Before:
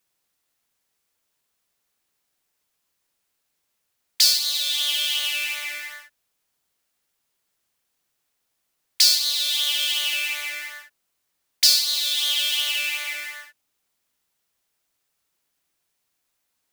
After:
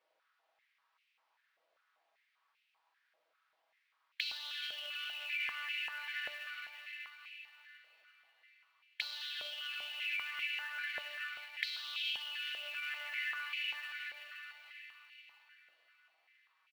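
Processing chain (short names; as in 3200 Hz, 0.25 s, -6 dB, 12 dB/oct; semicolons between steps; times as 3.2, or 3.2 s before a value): air absorption 250 m; comb 6.2 ms, depth 53%; diffused feedback echo 0.516 s, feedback 44%, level -14.5 dB; Schroeder reverb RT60 1.8 s, combs from 33 ms, DRR 11.5 dB; limiter -21 dBFS, peak gain reduction 10 dB; formant shift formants -2 st; compressor 20:1, threshold -42 dBFS, peak gain reduction 16 dB; short-mantissa float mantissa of 2-bit; stepped high-pass 5.1 Hz 580–2500 Hz; gain +1 dB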